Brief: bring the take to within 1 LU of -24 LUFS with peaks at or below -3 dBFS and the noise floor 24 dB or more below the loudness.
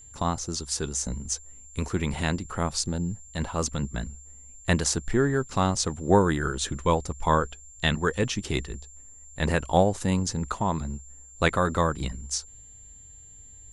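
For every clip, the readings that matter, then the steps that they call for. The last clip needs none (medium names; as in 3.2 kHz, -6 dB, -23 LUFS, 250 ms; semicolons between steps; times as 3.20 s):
steady tone 7.3 kHz; tone level -47 dBFS; loudness -27.0 LUFS; peak level -7.0 dBFS; loudness target -24.0 LUFS
-> band-stop 7.3 kHz, Q 30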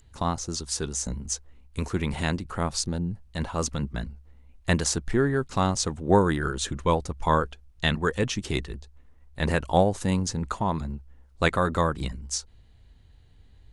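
steady tone not found; loudness -27.0 LUFS; peak level -7.0 dBFS; loudness target -24.0 LUFS
-> trim +3 dB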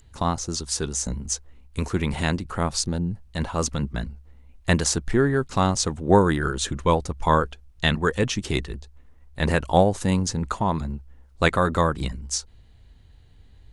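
loudness -24.0 LUFS; peak level -4.0 dBFS; noise floor -52 dBFS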